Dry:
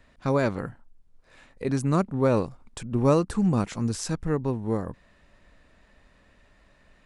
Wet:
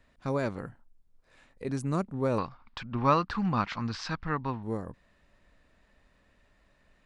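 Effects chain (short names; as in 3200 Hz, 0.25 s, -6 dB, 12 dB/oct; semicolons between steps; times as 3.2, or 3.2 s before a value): 2.38–4.63 EQ curve 270 Hz 0 dB, 420 Hz -5 dB, 1100 Hz +13 dB, 4700 Hz +8 dB, 10000 Hz -29 dB; gain -6.5 dB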